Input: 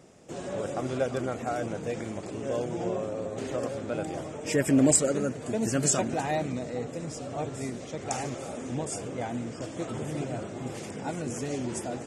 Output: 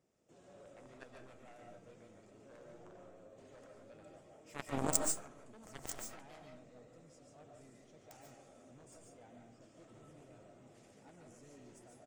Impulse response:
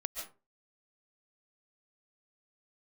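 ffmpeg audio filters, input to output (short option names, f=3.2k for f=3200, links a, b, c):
-filter_complex "[0:a]asplit=2[a][b];[b]asetrate=37084,aresample=44100,atempo=1.18921,volume=-16dB[c];[a][c]amix=inputs=2:normalize=0,aeval=exprs='0.447*(cos(1*acos(clip(val(0)/0.447,-1,1)))-cos(1*PI/2))+0.158*(cos(3*acos(clip(val(0)/0.447,-1,1)))-cos(3*PI/2))':c=same[d];[1:a]atrim=start_sample=2205[e];[d][e]afir=irnorm=-1:irlink=0,volume=1dB"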